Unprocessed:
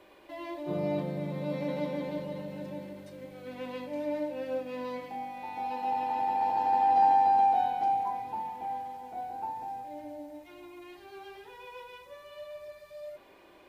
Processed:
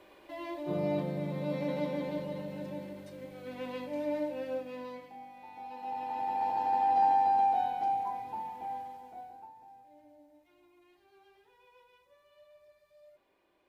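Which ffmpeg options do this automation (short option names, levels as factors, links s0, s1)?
-af "volume=2.11,afade=t=out:st=4.28:d=0.84:silence=0.334965,afade=t=in:st=5.7:d=0.72:silence=0.446684,afade=t=out:st=8.79:d=0.71:silence=0.223872"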